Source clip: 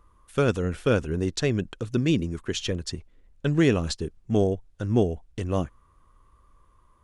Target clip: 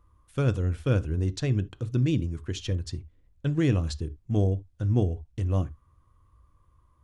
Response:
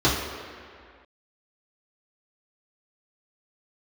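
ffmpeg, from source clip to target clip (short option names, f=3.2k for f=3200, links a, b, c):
-filter_complex "[0:a]equalizer=f=89:w=1.3:g=14,asplit=2[a][b];[1:a]atrim=start_sample=2205,atrim=end_sample=3528[c];[b][c]afir=irnorm=-1:irlink=0,volume=-30dB[d];[a][d]amix=inputs=2:normalize=0,volume=-7.5dB"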